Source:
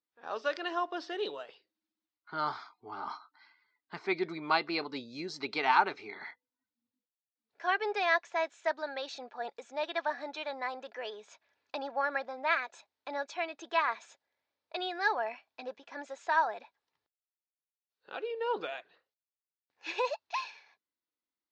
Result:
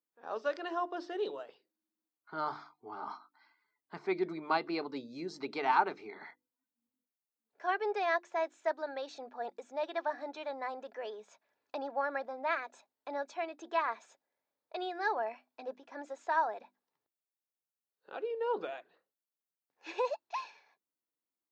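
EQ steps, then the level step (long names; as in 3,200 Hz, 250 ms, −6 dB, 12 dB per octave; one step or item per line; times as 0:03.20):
high-pass filter 150 Hz
parametric band 3,300 Hz −10 dB 2.8 octaves
mains-hum notches 50/100/150/200/250/300/350 Hz
+1.5 dB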